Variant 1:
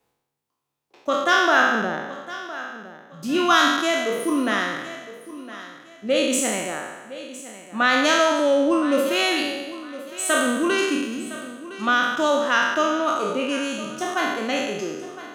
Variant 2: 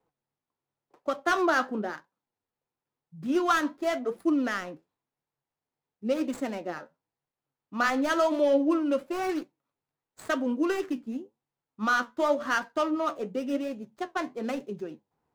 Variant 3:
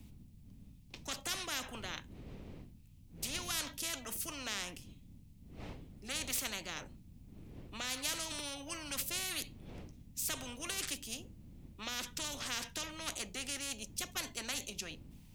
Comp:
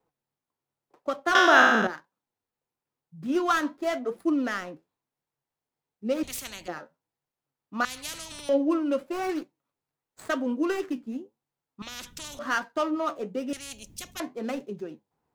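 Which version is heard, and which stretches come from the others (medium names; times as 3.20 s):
2
1.35–1.87 s: from 1
6.23–6.68 s: from 3
7.85–8.49 s: from 3
11.82–12.39 s: from 3
13.53–14.20 s: from 3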